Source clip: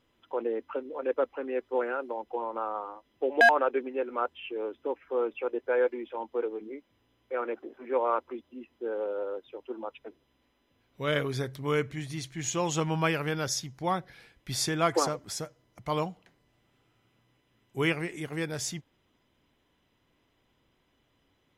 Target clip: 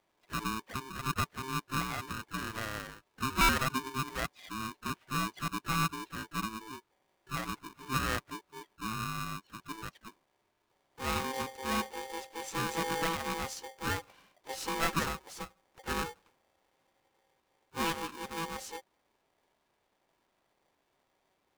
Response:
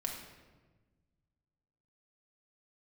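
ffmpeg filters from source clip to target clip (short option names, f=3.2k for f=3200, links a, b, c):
-filter_complex "[0:a]asplit=3[a][b][c];[b]asetrate=58866,aresample=44100,atempo=0.749154,volume=-11dB[d];[c]asetrate=88200,aresample=44100,atempo=0.5,volume=-16dB[e];[a][d][e]amix=inputs=3:normalize=0,highshelf=f=2.2k:g=-8.5,aeval=exprs='val(0)*sgn(sin(2*PI*660*n/s))':c=same,volume=-4.5dB"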